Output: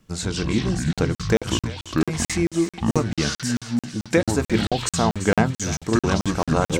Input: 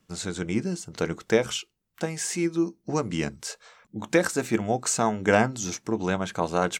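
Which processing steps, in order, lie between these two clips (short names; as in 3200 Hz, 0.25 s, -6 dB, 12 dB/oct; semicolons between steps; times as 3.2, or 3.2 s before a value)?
low shelf 130 Hz +11.5 dB; notches 60/120/180 Hz; in parallel at -2 dB: compressor, threshold -31 dBFS, peak gain reduction 16 dB; on the sum: echoes that change speed 90 ms, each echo -6 st, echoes 2; on a send: thinning echo 0.339 s, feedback 75%, high-pass 1200 Hz, level -12 dB; on the sum: crackling interface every 0.22 s, samples 2048, zero, from 0.93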